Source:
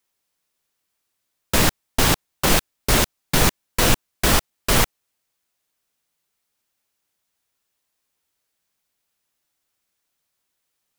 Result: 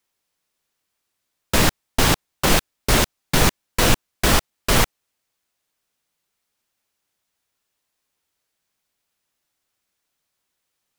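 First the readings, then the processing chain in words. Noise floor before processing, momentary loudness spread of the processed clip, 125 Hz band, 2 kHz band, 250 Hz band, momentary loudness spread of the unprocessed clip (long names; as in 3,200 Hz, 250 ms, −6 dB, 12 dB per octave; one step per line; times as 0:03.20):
−77 dBFS, 2 LU, +1.0 dB, +1.0 dB, +1.0 dB, 2 LU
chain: high-shelf EQ 8,800 Hz −4 dB
level +1 dB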